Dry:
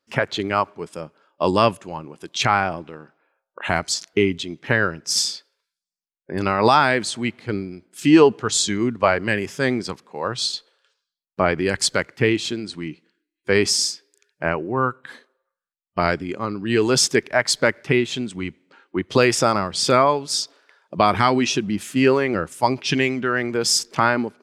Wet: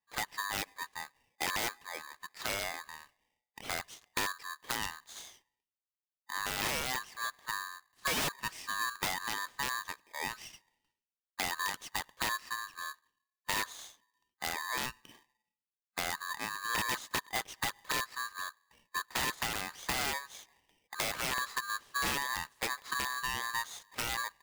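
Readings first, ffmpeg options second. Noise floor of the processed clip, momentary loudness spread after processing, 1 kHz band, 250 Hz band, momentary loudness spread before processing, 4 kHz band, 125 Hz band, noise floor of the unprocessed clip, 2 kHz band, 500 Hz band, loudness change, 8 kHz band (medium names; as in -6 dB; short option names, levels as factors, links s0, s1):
under -85 dBFS, 11 LU, -14.5 dB, -26.5 dB, 15 LU, -12.5 dB, -23.0 dB, under -85 dBFS, -11.0 dB, -25.5 dB, -15.0 dB, -13.0 dB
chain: -af "bandpass=f=440:t=q:w=0.64:csg=0,aeval=exprs='(mod(4.22*val(0)+1,2)-1)/4.22':c=same,acompressor=threshold=0.0794:ratio=4,aeval=exprs='val(0)*sgn(sin(2*PI*1400*n/s))':c=same,volume=0.355"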